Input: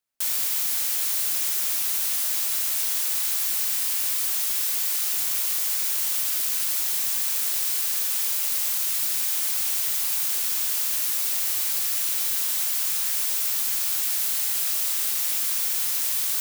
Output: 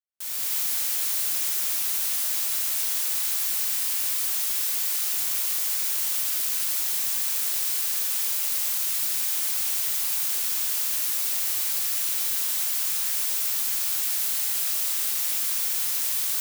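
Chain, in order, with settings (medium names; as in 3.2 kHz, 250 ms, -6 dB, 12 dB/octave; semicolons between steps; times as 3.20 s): fade-in on the opening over 0.54 s; 5.07–5.55 s: high-pass 130 Hz 12 dB/octave; trim -1 dB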